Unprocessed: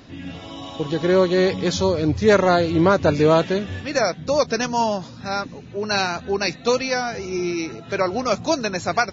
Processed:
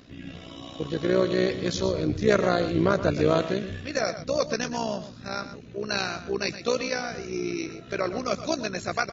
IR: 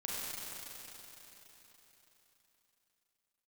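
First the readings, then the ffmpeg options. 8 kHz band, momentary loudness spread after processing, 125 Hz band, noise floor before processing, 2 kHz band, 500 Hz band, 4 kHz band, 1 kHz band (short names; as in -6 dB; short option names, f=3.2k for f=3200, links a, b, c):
n/a, 12 LU, -5.5 dB, -40 dBFS, -6.0 dB, -6.5 dB, -5.5 dB, -9.0 dB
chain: -af "equalizer=f=860:t=o:w=0.3:g=-11.5,tremolo=f=62:d=0.75,aecho=1:1:120:0.251,volume=-2.5dB"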